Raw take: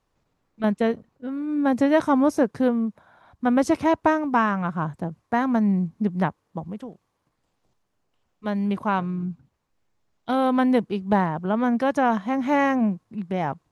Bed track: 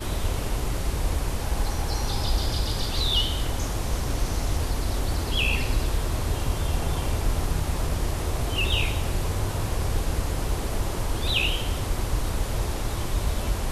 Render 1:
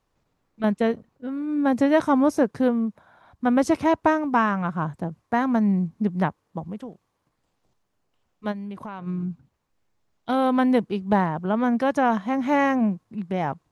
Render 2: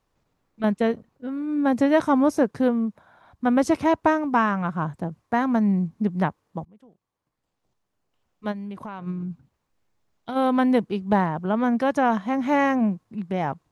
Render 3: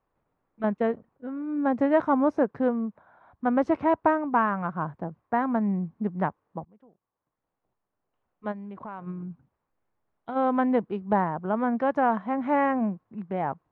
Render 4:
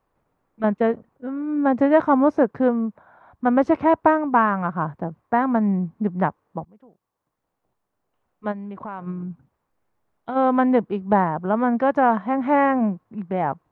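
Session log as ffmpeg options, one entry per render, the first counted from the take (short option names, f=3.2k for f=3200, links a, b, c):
-filter_complex "[0:a]asplit=3[a][b][c];[a]afade=t=out:st=8.51:d=0.02[d];[b]acompressor=threshold=-33dB:ratio=5:attack=3.2:release=140:knee=1:detection=peak,afade=t=in:st=8.51:d=0.02,afade=t=out:st=9.06:d=0.02[e];[c]afade=t=in:st=9.06:d=0.02[f];[d][e][f]amix=inputs=3:normalize=0"
-filter_complex "[0:a]asplit=3[a][b][c];[a]afade=t=out:st=9.11:d=0.02[d];[b]acompressor=threshold=-27dB:ratio=6:attack=3.2:release=140:knee=1:detection=peak,afade=t=in:st=9.11:d=0.02,afade=t=out:st=10.35:d=0.02[e];[c]afade=t=in:st=10.35:d=0.02[f];[d][e][f]amix=inputs=3:normalize=0,asplit=2[g][h];[g]atrim=end=6.65,asetpts=PTS-STARTPTS,afade=t=out:st=6.646:d=0.004:c=hsin:silence=0.0668344[i];[h]atrim=start=6.65,asetpts=PTS-STARTPTS,afade=t=in:d=1.92:silence=0.0668344[j];[i][j]concat=n=2:v=0:a=1"
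-af "lowpass=1.5k,lowshelf=f=330:g=-7.5"
-af "volume=5.5dB"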